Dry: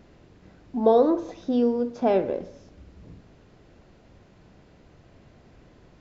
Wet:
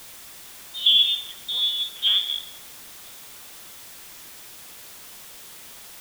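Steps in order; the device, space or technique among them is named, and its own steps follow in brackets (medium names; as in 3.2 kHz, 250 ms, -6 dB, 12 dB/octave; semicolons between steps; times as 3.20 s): scrambled radio voice (band-pass 400–2700 Hz; frequency inversion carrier 3.9 kHz; white noise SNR 15 dB); trim +2 dB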